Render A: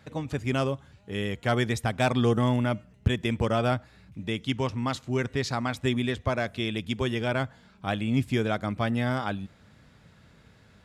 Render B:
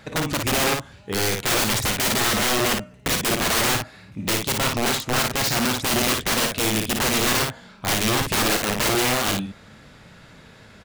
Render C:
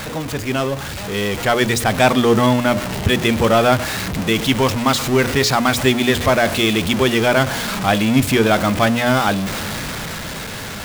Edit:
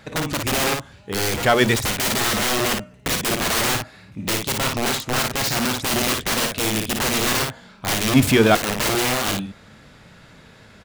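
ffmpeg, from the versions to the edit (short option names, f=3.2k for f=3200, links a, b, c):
-filter_complex "[2:a]asplit=2[a][b];[1:a]asplit=3[c][d][e];[c]atrim=end=1.342[f];[a]atrim=start=1.338:end=1.762[g];[d]atrim=start=1.758:end=8.142[h];[b]atrim=start=8.138:end=8.552[i];[e]atrim=start=8.548[j];[f][g]acrossfade=d=0.004:c1=hsin:c2=hsin[k];[k][h]acrossfade=d=0.004:c1=hsin:c2=hsin[l];[l][i]acrossfade=d=0.004:c1=hsin:c2=hsin[m];[m][j]acrossfade=d=0.004:c1=hsin:c2=hsin"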